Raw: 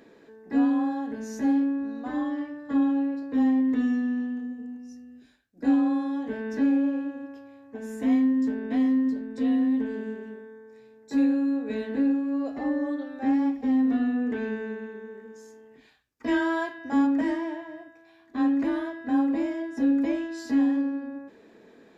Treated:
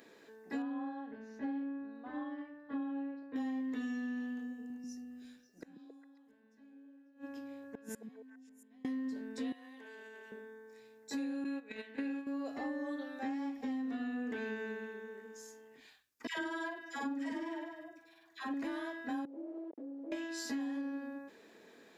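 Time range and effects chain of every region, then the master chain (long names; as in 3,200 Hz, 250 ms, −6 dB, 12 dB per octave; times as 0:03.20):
0:00.62–0:03.36: high-frequency loss of the air 360 metres + expander for the loud parts, over −32 dBFS
0:04.70–0:08.85: gate with flip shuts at −28 dBFS, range −32 dB + low-shelf EQ 150 Hz +8 dB + echo through a band-pass that steps 136 ms, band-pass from 200 Hz, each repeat 1.4 octaves, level −1 dB
0:09.52–0:10.32: high-pass filter 630 Hz + downward compressor, threshold −43 dBFS
0:11.44–0:12.27: noise gate −28 dBFS, range −15 dB + parametric band 2,300 Hz +9.5 dB 1.1 octaves
0:16.27–0:18.54: amplitude tremolo 20 Hz, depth 58% + double-tracking delay 22 ms −12.5 dB + all-pass dispersion lows, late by 112 ms, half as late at 880 Hz
0:19.25–0:20.12: hold until the input has moved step −32 dBFS + downward compressor 5 to 1, threshold −32 dBFS + flat-topped band-pass 430 Hz, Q 1.3
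whole clip: spectral tilt +2.5 dB per octave; downward compressor, threshold −32 dBFS; level −3.5 dB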